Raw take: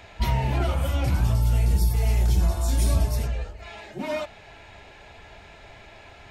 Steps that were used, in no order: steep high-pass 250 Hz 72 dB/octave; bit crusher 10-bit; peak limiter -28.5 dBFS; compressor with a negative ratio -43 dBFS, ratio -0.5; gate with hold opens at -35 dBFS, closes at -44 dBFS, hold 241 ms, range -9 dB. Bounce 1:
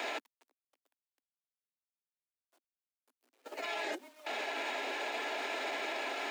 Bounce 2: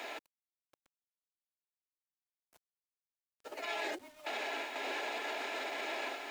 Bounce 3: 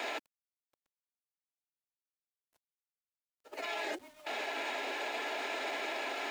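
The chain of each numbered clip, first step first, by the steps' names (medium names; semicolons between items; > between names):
compressor with a negative ratio > bit crusher > gate with hold > steep high-pass > peak limiter; gate with hold > compressor with a negative ratio > peak limiter > steep high-pass > bit crusher; compressor with a negative ratio > steep high-pass > peak limiter > bit crusher > gate with hold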